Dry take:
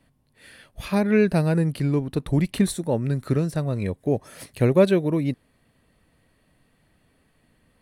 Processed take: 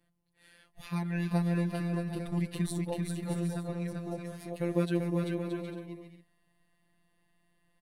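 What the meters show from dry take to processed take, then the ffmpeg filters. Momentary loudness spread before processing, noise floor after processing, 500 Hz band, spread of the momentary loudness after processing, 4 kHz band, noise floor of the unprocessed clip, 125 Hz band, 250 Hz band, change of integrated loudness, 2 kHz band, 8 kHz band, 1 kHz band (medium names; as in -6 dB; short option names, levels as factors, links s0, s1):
8 LU, -73 dBFS, -13.5 dB, 11 LU, -9.5 dB, -65 dBFS, -9.0 dB, -9.0 dB, -10.5 dB, -10.0 dB, -9.0 dB, -9.0 dB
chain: -af "afftfilt=real='hypot(re,im)*cos(PI*b)':imag='0':win_size=1024:overlap=0.75,aecho=1:1:390|624|764.4|848.6|899.2:0.631|0.398|0.251|0.158|0.1,volume=0.398"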